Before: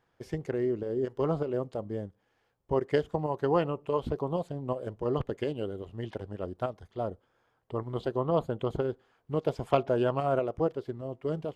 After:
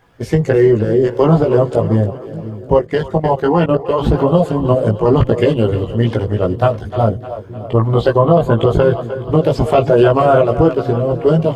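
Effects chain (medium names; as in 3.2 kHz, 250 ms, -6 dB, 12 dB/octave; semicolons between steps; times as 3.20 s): coarse spectral quantiser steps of 15 dB; on a send: two-band feedback delay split 360 Hz, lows 525 ms, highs 304 ms, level -14 dB; 2.77–4.00 s: on the sum: level held to a coarse grid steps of 16 dB; chorus voices 6, 0.48 Hz, delay 18 ms, depth 1.1 ms; loudness maximiser +24 dB; trim -1 dB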